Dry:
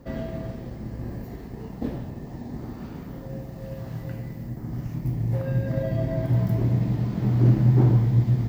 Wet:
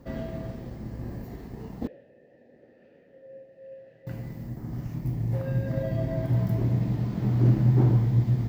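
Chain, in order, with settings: 1.87–4.07 s: vowel filter e; trim -2.5 dB

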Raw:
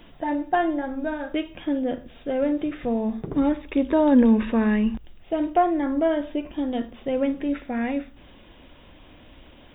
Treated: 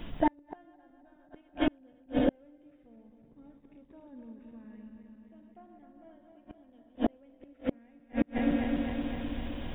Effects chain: backward echo that repeats 129 ms, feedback 82%, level -6 dB; tone controls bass +7 dB, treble -1 dB; inverted gate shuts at -16 dBFS, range -39 dB; trim +2.5 dB

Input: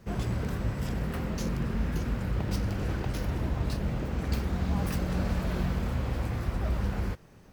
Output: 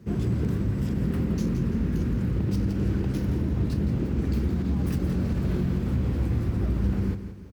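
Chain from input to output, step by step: high-pass 58 Hz 24 dB/octave; resonant low shelf 470 Hz +9 dB, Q 1.5; peak limiter -14.5 dBFS, peak gain reduction 6 dB; feedback delay 169 ms, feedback 43%, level -10.5 dB; trim -3 dB

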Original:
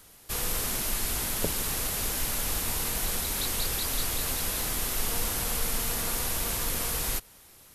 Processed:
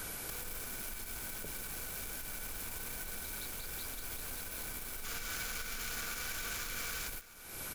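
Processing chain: tilt EQ -4 dB/octave; small resonant body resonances 1.5/2.3 kHz, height 14 dB, ringing for 35 ms; in parallel at -10 dB: bit crusher 5-bit; on the sum: compression 16:1, threshold -32 dBFS, peak gain reduction 31.5 dB; RIAA curve recording; hard clipper -32.5 dBFS, distortion -22 dB; peak limiter -41.5 dBFS, peak gain reduction 9 dB; time-frequency box 5.05–7.08 s, 1.1–7.5 kHz +7 dB; on a send: delay 1198 ms -17 dB; on the sum: trim +10.5 dB

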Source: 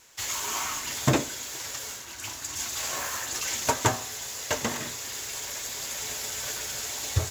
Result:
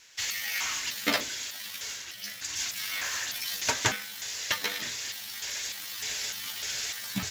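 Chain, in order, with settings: pitch shift switched off and on +12 st, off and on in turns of 301 ms; high-order bell 3.1 kHz +10.5 dB 2.3 oct; trim -7 dB

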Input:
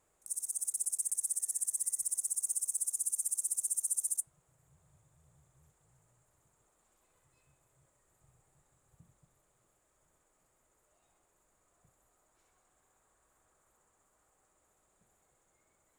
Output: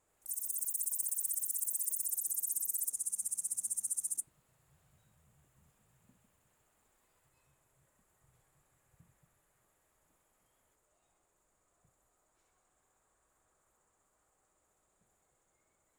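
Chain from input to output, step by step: ever faster or slower copies 84 ms, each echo +7 st, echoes 3; trim -3 dB

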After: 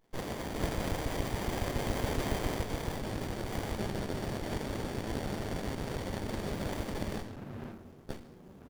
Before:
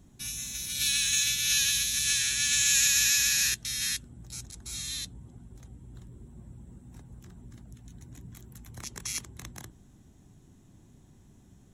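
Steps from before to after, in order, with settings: rattle on loud lows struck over -47 dBFS, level -22 dBFS; low-pass 8.4 kHz 12 dB/octave; bands offset in time highs, lows 690 ms, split 720 Hz; pitch shift +5.5 st; compression 3:1, threshold -37 dBFS, peak gain reduction 11.5 dB; dynamic bell 1.5 kHz, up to +7 dB, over -60 dBFS, Q 0.92; speed mistake 33 rpm record played at 45 rpm; bass shelf 380 Hz -7 dB; reverberation RT60 0.55 s, pre-delay 3 ms, DRR -8 dB; crackling interface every 0.14 s, samples 256, zero, from 0.64 s; sliding maximum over 33 samples

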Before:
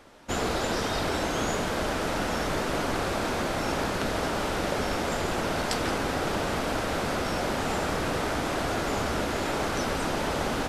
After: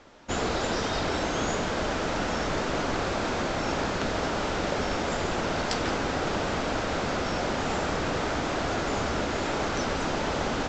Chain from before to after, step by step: steep low-pass 7.6 kHz 96 dB/octave

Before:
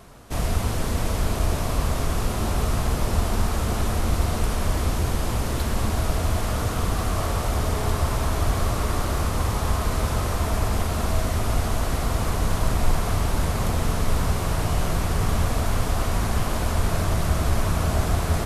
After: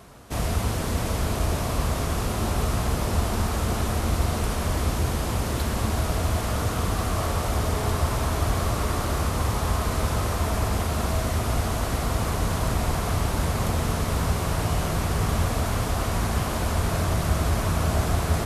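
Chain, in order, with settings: high-pass 45 Hz

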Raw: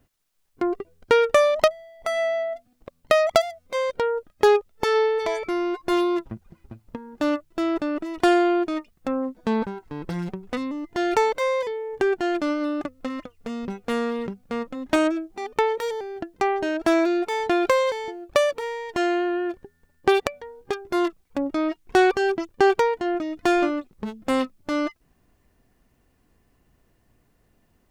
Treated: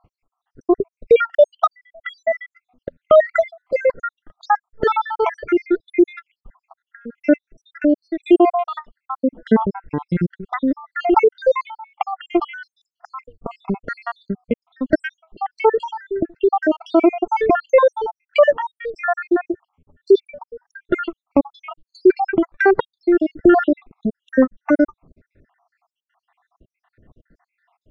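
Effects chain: random holes in the spectrogram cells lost 79%; low-pass 1.8 kHz 12 dB/octave; loudness maximiser +15.5 dB; trim -2.5 dB

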